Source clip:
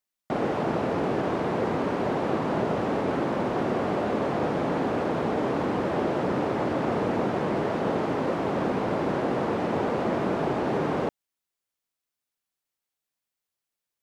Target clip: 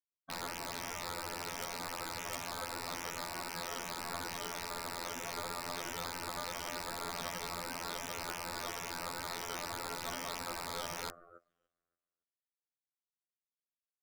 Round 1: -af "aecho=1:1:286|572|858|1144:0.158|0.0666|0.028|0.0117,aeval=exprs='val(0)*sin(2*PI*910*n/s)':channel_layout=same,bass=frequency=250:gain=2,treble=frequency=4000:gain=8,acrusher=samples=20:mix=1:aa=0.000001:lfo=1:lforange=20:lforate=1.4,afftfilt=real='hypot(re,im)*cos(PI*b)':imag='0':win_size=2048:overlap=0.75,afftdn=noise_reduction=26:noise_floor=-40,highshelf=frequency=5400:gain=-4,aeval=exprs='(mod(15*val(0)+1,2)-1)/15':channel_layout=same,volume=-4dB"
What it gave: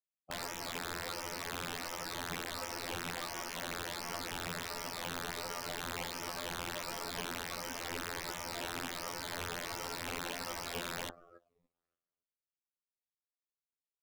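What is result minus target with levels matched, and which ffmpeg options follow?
sample-and-hold swept by an LFO: distortion +11 dB
-af "aecho=1:1:286|572|858|1144:0.158|0.0666|0.028|0.0117,aeval=exprs='val(0)*sin(2*PI*910*n/s)':channel_layout=same,bass=frequency=250:gain=2,treble=frequency=4000:gain=8,acrusher=samples=7:mix=1:aa=0.000001:lfo=1:lforange=7:lforate=1.4,afftfilt=real='hypot(re,im)*cos(PI*b)':imag='0':win_size=2048:overlap=0.75,afftdn=noise_reduction=26:noise_floor=-40,highshelf=frequency=5400:gain=-4,aeval=exprs='(mod(15*val(0)+1,2)-1)/15':channel_layout=same,volume=-4dB"

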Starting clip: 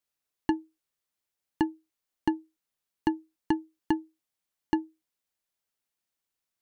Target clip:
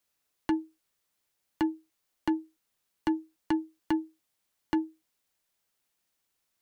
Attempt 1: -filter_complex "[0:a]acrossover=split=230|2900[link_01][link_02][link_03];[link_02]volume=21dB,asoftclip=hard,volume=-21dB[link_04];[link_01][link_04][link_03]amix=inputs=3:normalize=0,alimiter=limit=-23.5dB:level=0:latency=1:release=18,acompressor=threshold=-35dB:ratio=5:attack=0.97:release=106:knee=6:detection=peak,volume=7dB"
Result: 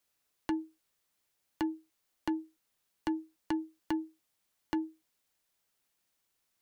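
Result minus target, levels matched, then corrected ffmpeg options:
downward compressor: peak gain reduction +5.5 dB
-filter_complex "[0:a]acrossover=split=230|2900[link_01][link_02][link_03];[link_02]volume=21dB,asoftclip=hard,volume=-21dB[link_04];[link_01][link_04][link_03]amix=inputs=3:normalize=0,alimiter=limit=-23.5dB:level=0:latency=1:release=18,acompressor=threshold=-28dB:ratio=5:attack=0.97:release=106:knee=6:detection=peak,volume=7dB"

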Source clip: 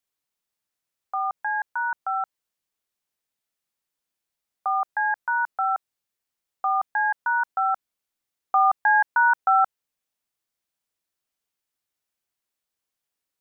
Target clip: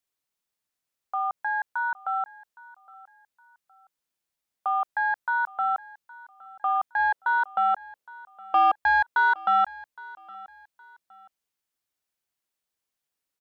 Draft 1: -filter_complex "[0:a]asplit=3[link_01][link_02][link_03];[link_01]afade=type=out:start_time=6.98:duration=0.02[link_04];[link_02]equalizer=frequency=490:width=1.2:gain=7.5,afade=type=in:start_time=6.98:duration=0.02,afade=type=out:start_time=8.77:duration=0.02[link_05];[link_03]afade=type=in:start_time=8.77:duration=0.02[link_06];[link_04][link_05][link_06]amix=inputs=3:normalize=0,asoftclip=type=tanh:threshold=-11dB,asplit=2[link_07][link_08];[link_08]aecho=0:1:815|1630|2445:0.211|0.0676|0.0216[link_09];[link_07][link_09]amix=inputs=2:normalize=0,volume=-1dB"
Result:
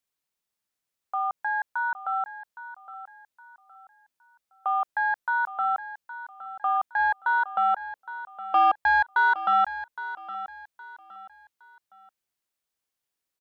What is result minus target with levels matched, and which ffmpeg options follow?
echo-to-direct +7.5 dB
-filter_complex "[0:a]asplit=3[link_01][link_02][link_03];[link_01]afade=type=out:start_time=6.98:duration=0.02[link_04];[link_02]equalizer=frequency=490:width=1.2:gain=7.5,afade=type=in:start_time=6.98:duration=0.02,afade=type=out:start_time=8.77:duration=0.02[link_05];[link_03]afade=type=in:start_time=8.77:duration=0.02[link_06];[link_04][link_05][link_06]amix=inputs=3:normalize=0,asoftclip=type=tanh:threshold=-11dB,asplit=2[link_07][link_08];[link_08]aecho=0:1:815|1630:0.0891|0.0285[link_09];[link_07][link_09]amix=inputs=2:normalize=0,volume=-1dB"

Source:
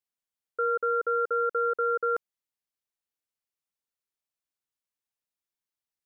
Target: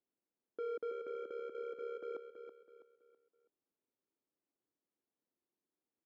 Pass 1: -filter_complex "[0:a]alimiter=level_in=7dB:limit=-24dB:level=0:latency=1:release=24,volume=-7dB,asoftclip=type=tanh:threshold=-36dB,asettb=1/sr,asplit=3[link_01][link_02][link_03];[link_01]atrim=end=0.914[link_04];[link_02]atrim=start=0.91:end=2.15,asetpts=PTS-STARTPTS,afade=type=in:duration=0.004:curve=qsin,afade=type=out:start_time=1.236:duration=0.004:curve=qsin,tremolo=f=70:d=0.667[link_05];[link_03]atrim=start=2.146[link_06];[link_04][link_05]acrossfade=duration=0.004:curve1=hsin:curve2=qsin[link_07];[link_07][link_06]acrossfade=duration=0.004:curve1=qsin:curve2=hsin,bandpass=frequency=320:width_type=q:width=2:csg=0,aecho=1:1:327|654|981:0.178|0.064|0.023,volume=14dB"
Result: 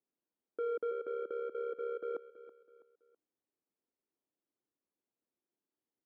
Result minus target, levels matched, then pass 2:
echo-to-direct −6.5 dB; soft clipping: distortion −6 dB
-filter_complex "[0:a]alimiter=level_in=7dB:limit=-24dB:level=0:latency=1:release=24,volume=-7dB,asoftclip=type=tanh:threshold=-42.5dB,asettb=1/sr,asplit=3[link_01][link_02][link_03];[link_01]atrim=end=0.914[link_04];[link_02]atrim=start=0.91:end=2.15,asetpts=PTS-STARTPTS,afade=type=in:duration=0.004:curve=qsin,afade=type=out:start_time=1.236:duration=0.004:curve=qsin,tremolo=f=70:d=0.667[link_05];[link_03]atrim=start=2.146[link_06];[link_04][link_05]acrossfade=duration=0.004:curve1=hsin:curve2=qsin[link_07];[link_07][link_06]acrossfade=duration=0.004:curve1=qsin:curve2=hsin,bandpass=frequency=320:width_type=q:width=2:csg=0,aecho=1:1:327|654|981|1308:0.376|0.135|0.0487|0.0175,volume=14dB"

